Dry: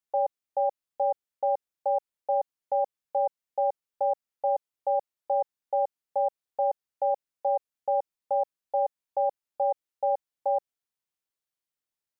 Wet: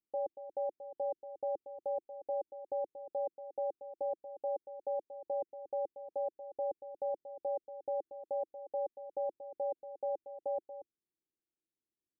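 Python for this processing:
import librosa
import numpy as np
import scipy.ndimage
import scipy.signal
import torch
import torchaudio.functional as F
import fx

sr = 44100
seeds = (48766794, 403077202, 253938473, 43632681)

y = fx.lowpass_res(x, sr, hz=340.0, q=4.0)
y = y + 10.0 ** (-11.5 / 20.0) * np.pad(y, (int(233 * sr / 1000.0), 0))[:len(y)]
y = y * 10.0 ** (-2.5 / 20.0)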